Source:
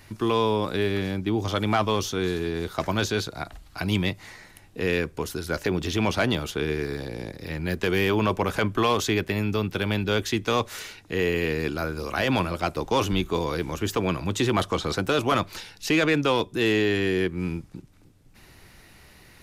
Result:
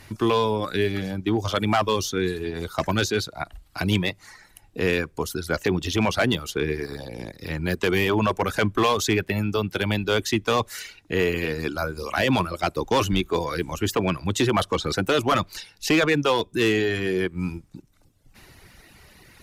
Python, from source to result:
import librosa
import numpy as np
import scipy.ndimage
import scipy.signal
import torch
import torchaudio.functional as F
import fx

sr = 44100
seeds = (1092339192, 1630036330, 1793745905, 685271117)

y = fx.dereverb_blind(x, sr, rt60_s=1.1)
y = fx.clip_asym(y, sr, top_db=-19.0, bottom_db=-16.0)
y = y * librosa.db_to_amplitude(3.5)